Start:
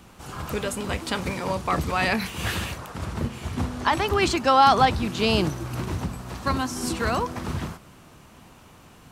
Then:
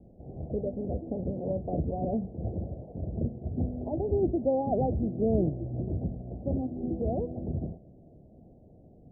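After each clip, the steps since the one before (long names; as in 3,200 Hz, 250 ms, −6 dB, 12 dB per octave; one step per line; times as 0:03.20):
Butterworth low-pass 700 Hz 72 dB per octave
level −2.5 dB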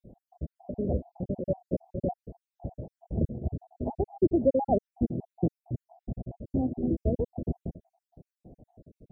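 time-frequency cells dropped at random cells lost 63%
level +4.5 dB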